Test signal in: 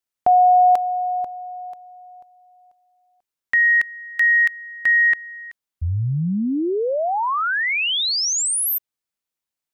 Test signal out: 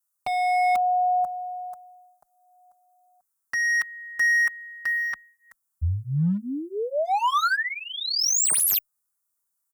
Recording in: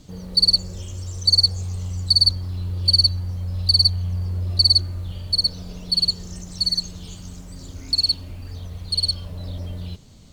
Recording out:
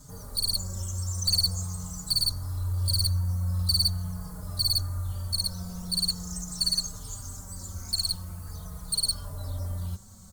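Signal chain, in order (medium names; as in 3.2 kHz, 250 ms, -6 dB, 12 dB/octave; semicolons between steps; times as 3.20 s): FFT filter 130 Hz 0 dB, 200 Hz +1 dB, 310 Hz -9 dB, 1.3 kHz +8 dB, 2.7 kHz -14 dB, 8.7 kHz +14 dB; hard clipper -18 dBFS; endless flanger 4.4 ms -0.44 Hz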